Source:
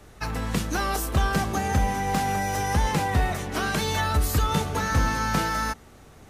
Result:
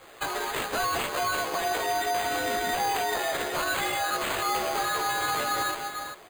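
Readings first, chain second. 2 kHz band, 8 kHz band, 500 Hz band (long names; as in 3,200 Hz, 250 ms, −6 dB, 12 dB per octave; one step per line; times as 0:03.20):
+0.5 dB, −0.5 dB, +1.0 dB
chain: Butterworth high-pass 480 Hz 36 dB per octave
on a send: single-tap delay 397 ms −13.5 dB
on the sum: frequency shifter −75 Hz
multi-voice chorus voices 2, 0.83 Hz, delay 15 ms, depth 1.6 ms
bad sample-rate conversion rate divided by 8×, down none, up hold
brickwall limiter −29 dBFS, peak gain reduction 10.5 dB
level +8.5 dB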